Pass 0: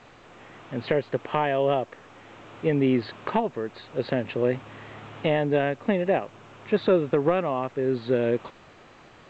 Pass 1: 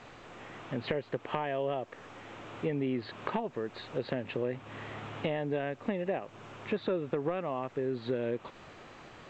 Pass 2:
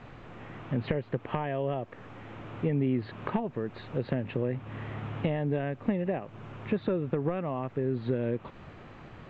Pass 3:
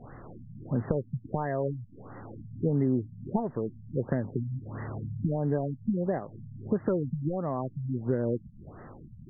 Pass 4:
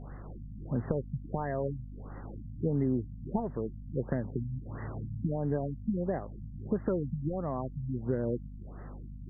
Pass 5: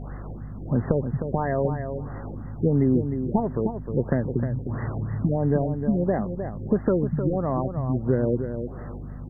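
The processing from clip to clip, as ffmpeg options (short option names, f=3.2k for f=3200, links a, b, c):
-af "acompressor=threshold=-32dB:ratio=3"
-af "bass=f=250:g=10,treble=f=4k:g=-12"
-af "afftfilt=real='re*lt(b*sr/1024,210*pow(2100/210,0.5+0.5*sin(2*PI*1.5*pts/sr)))':imag='im*lt(b*sr/1024,210*pow(2100/210,0.5+0.5*sin(2*PI*1.5*pts/sr)))':win_size=1024:overlap=0.75,volume=1.5dB"
-af "aeval=exprs='val(0)+0.01*(sin(2*PI*50*n/s)+sin(2*PI*2*50*n/s)/2+sin(2*PI*3*50*n/s)/3+sin(2*PI*4*50*n/s)/4+sin(2*PI*5*50*n/s)/5)':c=same,volume=-3dB"
-af "aecho=1:1:308|616|924:0.398|0.0677|0.0115,volume=8.5dB"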